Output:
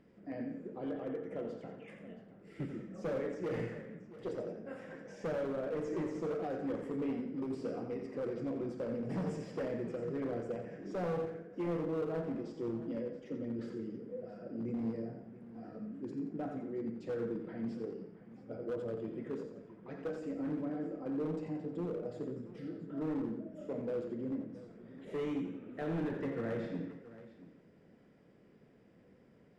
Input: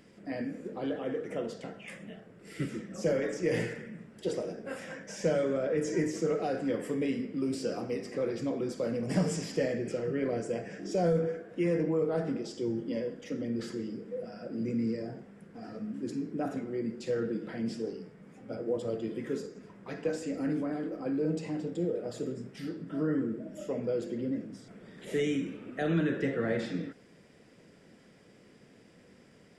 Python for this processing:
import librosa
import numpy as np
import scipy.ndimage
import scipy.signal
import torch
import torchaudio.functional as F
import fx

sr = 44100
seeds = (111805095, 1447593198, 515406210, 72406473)

p1 = fx.lowpass(x, sr, hz=1100.0, slope=6)
p2 = np.clip(p1, -10.0 ** (-27.5 / 20.0), 10.0 ** (-27.5 / 20.0))
p3 = p2 + fx.echo_multitap(p2, sr, ms=(87, 176, 676), db=(-8.0, -15.5, -16.0), dry=0)
y = p3 * librosa.db_to_amplitude(-5.0)